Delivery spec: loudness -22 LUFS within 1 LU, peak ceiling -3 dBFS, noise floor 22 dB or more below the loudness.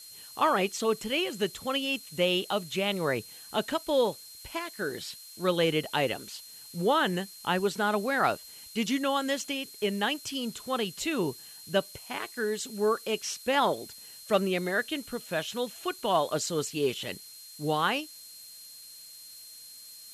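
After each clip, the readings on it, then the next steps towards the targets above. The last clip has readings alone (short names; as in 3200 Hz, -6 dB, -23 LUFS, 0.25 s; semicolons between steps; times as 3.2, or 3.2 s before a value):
steady tone 4200 Hz; tone level -49 dBFS; noise floor -48 dBFS; noise floor target -52 dBFS; loudness -29.5 LUFS; peak -12.5 dBFS; loudness target -22.0 LUFS
-> notch 4200 Hz, Q 30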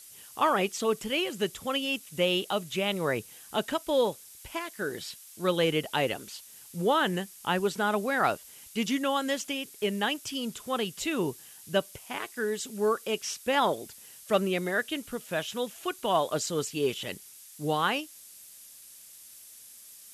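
steady tone none; noise floor -50 dBFS; noise floor target -52 dBFS
-> noise print and reduce 6 dB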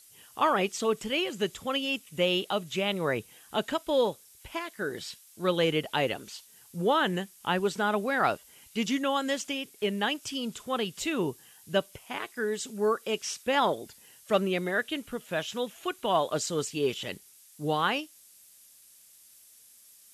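noise floor -56 dBFS; loudness -30.0 LUFS; peak -12.5 dBFS; loudness target -22.0 LUFS
-> gain +8 dB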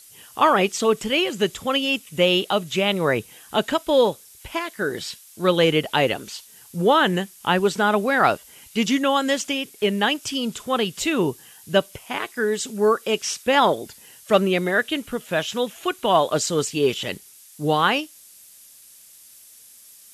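loudness -22.0 LUFS; peak -4.5 dBFS; noise floor -48 dBFS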